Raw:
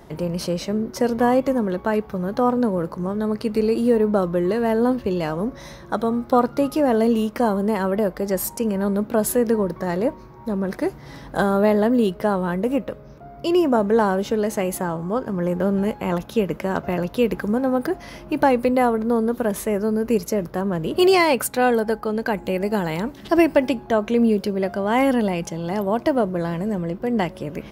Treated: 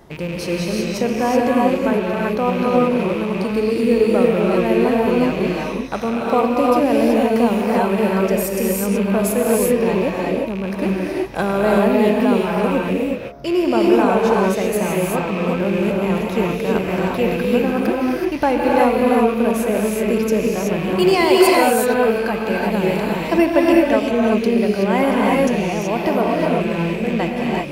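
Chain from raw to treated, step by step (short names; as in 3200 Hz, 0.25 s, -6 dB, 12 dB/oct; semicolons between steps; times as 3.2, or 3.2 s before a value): rattling part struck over -34 dBFS, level -23 dBFS; non-linear reverb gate 0.4 s rising, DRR -3 dB; gain -1 dB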